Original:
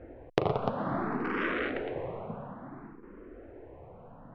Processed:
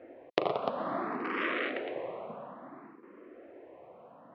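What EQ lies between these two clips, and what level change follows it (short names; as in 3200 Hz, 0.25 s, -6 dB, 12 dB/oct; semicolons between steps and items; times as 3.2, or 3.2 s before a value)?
speaker cabinet 380–5200 Hz, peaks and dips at 440 Hz -5 dB, 850 Hz -6 dB, 1500 Hz -7 dB; +3.0 dB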